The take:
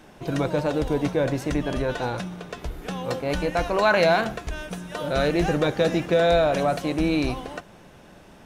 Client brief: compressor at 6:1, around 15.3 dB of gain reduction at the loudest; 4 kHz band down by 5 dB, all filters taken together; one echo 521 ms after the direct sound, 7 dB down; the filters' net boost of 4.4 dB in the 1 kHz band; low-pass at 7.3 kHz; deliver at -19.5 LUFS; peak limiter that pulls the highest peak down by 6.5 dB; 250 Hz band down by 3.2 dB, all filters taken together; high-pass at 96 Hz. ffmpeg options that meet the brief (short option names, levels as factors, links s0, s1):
-af "highpass=96,lowpass=7300,equalizer=f=250:t=o:g=-5,equalizer=f=1000:t=o:g=7,equalizer=f=4000:t=o:g=-6,acompressor=threshold=0.0316:ratio=6,alimiter=level_in=1.06:limit=0.0631:level=0:latency=1,volume=0.944,aecho=1:1:521:0.447,volume=5.96"